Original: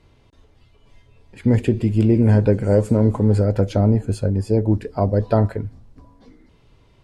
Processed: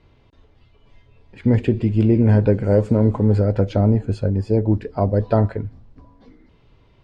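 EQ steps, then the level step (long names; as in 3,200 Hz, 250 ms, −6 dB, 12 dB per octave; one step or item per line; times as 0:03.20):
low-pass filter 4,300 Hz 12 dB per octave
0.0 dB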